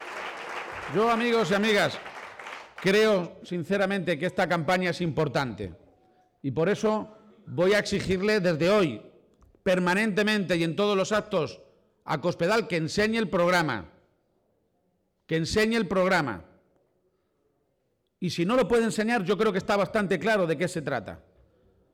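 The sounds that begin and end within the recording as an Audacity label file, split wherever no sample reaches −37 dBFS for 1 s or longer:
15.290000	16.400000	sound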